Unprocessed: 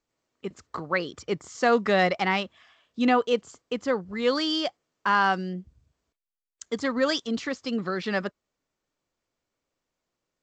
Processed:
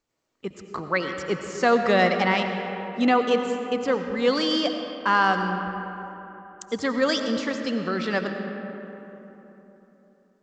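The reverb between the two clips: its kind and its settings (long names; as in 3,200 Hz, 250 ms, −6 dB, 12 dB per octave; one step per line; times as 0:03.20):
comb and all-pass reverb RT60 3.7 s, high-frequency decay 0.45×, pre-delay 50 ms, DRR 5.5 dB
level +1.5 dB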